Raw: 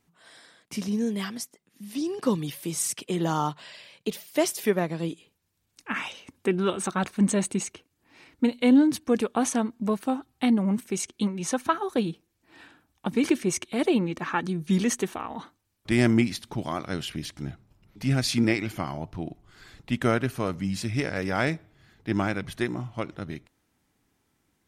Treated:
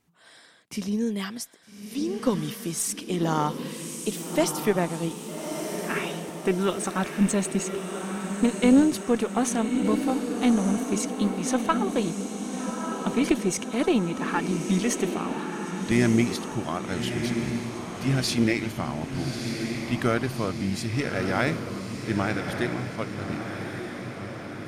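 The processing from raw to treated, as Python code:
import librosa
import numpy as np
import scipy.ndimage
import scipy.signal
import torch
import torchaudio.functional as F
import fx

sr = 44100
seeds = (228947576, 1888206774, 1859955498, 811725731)

y = fx.echo_diffused(x, sr, ms=1230, feedback_pct=57, wet_db=-6.0)
y = fx.cheby_harmonics(y, sr, harmonics=(2,), levels_db=(-12,), full_scale_db=-6.5)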